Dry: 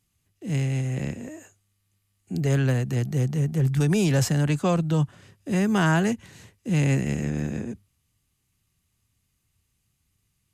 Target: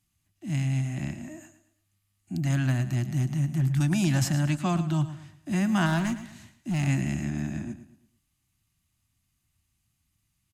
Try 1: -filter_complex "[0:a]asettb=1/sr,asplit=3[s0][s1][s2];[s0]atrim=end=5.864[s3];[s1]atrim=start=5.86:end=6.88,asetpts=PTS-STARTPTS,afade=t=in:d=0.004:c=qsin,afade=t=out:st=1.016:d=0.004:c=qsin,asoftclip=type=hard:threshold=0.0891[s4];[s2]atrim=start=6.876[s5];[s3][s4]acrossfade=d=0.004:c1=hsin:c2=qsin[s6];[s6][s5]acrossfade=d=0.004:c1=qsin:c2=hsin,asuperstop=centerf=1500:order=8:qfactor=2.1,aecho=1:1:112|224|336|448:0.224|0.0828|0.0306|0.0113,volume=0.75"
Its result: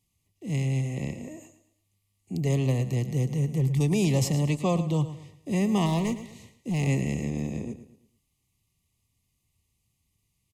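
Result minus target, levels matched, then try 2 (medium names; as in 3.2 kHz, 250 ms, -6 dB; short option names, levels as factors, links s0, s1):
500 Hz band +7.5 dB
-filter_complex "[0:a]asettb=1/sr,asplit=3[s0][s1][s2];[s0]atrim=end=5.864[s3];[s1]atrim=start=5.86:end=6.88,asetpts=PTS-STARTPTS,afade=t=in:d=0.004:c=qsin,afade=t=out:st=1.016:d=0.004:c=qsin,asoftclip=type=hard:threshold=0.0891[s4];[s2]atrim=start=6.876[s5];[s3][s4]acrossfade=d=0.004:c1=hsin:c2=qsin[s6];[s6][s5]acrossfade=d=0.004:c1=qsin:c2=hsin,asuperstop=centerf=460:order=8:qfactor=2.1,aecho=1:1:112|224|336|448:0.224|0.0828|0.0306|0.0113,volume=0.75"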